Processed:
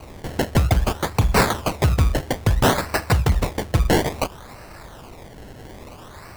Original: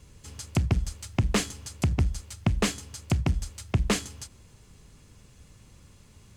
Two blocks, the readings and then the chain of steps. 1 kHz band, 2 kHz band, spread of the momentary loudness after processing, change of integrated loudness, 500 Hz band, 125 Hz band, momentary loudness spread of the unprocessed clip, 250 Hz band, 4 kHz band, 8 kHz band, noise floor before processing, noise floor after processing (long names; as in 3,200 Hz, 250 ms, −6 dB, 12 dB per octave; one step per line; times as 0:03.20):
+15.0 dB, +11.0 dB, 22 LU, +7.5 dB, +13.0 dB, +7.0 dB, 14 LU, +6.5 dB, +7.0 dB, +4.0 dB, −56 dBFS, −42 dBFS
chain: low shelf with overshoot 500 Hz −12 dB, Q 1.5
sine wavefolder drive 17 dB, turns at −10.5 dBFS
auto-filter notch saw down 0.33 Hz 610–3,300 Hz
sample-and-hold swept by an LFO 25×, swing 100% 0.59 Hz